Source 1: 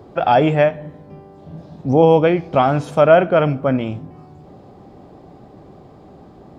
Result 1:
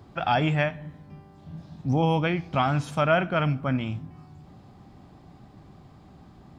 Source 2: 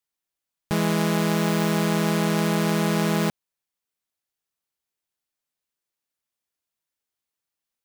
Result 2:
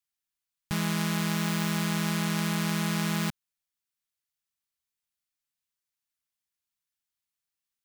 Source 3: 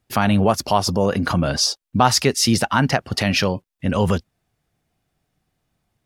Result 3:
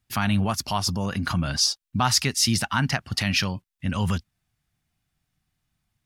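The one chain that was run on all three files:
bell 480 Hz -14.5 dB 1.5 oct; gain -2 dB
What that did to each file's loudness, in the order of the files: -10.0, -5.5, -5.0 LU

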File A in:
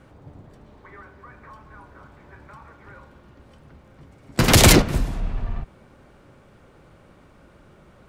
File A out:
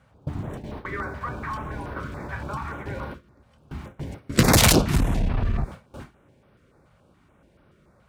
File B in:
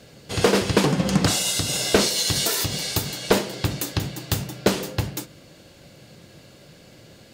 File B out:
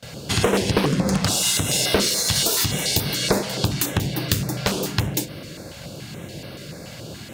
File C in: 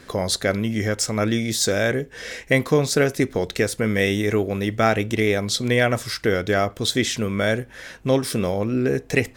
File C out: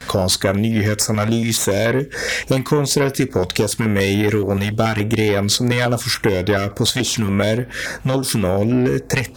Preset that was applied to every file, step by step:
one diode to ground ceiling -19.5 dBFS; compressor 3:1, threshold -32 dBFS; HPF 41 Hz 12 dB/oct; gate with hold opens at -39 dBFS; stepped notch 7 Hz 340–7200 Hz; normalise peaks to -2 dBFS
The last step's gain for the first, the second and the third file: +15.0, +12.5, +15.5 dB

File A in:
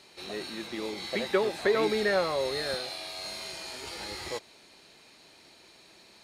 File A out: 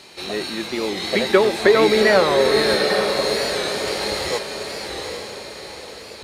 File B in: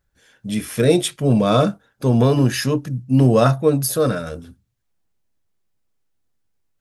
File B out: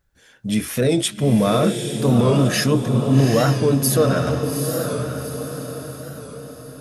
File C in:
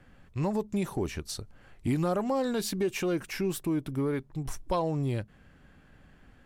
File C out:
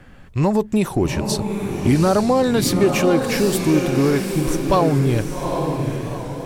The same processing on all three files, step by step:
limiter -12 dBFS; diffused feedback echo 0.812 s, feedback 47%, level -5 dB; record warp 45 rpm, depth 100 cents; match loudness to -19 LUFS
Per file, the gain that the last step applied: +11.0, +2.5, +11.5 dB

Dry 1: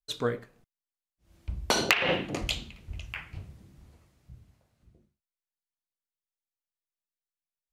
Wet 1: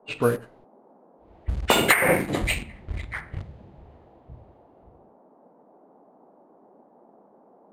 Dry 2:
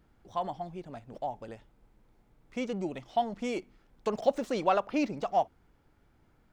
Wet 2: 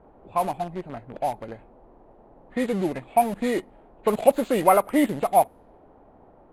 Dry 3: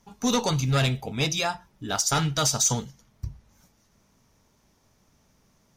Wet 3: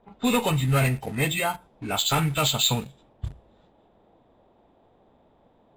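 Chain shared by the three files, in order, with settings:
nonlinear frequency compression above 1300 Hz 1.5:1; in parallel at -9 dB: bit-crush 6-bit; on the sum: band noise 190–850 Hz -60 dBFS; careless resampling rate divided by 4×, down filtered, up hold; low-pass opened by the level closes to 2400 Hz, open at -23.5 dBFS; match loudness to -24 LUFS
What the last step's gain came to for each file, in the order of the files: +5.0, +6.0, -1.0 dB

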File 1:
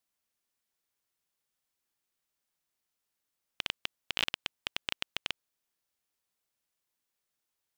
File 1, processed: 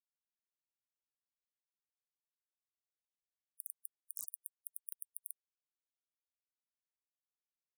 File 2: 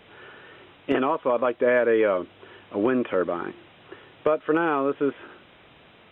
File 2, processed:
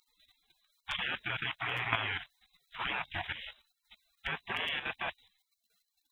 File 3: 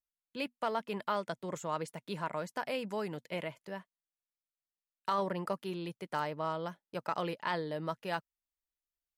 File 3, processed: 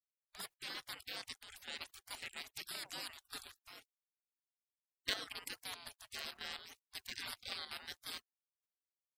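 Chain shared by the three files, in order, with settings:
dynamic EQ 960 Hz, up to +6 dB, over -38 dBFS, Q 1.4; spectral gate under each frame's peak -30 dB weak; level quantiser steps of 10 dB; gain +15 dB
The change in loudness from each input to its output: -10.5, -11.5, -8.0 LU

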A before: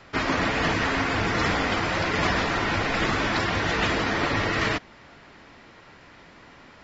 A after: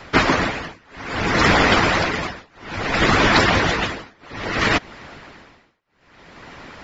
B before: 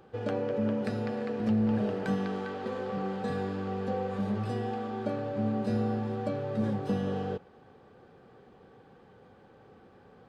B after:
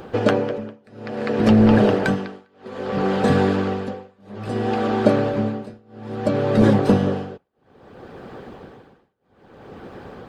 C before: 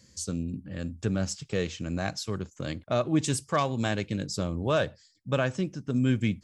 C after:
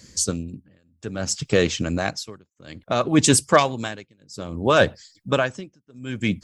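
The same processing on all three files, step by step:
harmonic-percussive split harmonic -10 dB; tremolo 0.6 Hz, depth 99%; normalise peaks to -1.5 dBFS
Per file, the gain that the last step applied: +13.5, +22.5, +14.5 dB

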